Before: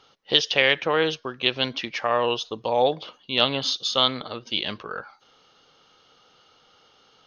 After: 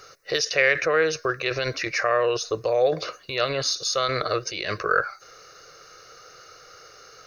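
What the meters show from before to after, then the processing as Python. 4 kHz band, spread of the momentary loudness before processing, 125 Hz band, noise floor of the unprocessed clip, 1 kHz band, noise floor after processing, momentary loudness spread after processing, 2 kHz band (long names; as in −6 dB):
−6.5 dB, 11 LU, +2.0 dB, −59 dBFS, −0.5 dB, −50 dBFS, 8 LU, +2.5 dB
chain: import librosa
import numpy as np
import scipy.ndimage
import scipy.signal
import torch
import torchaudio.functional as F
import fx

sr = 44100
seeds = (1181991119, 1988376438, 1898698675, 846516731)

p1 = fx.high_shelf(x, sr, hz=3200.0, db=11.0)
p2 = fx.over_compress(p1, sr, threshold_db=-31.0, ratio=-1.0)
p3 = p1 + (p2 * 10.0 ** (1.0 / 20.0))
y = fx.fixed_phaser(p3, sr, hz=880.0, stages=6)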